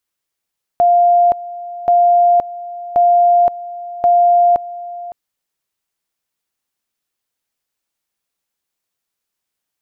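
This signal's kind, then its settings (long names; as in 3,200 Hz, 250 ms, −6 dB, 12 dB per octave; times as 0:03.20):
tone at two levels in turn 700 Hz −7.5 dBFS, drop 17.5 dB, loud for 0.52 s, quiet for 0.56 s, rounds 4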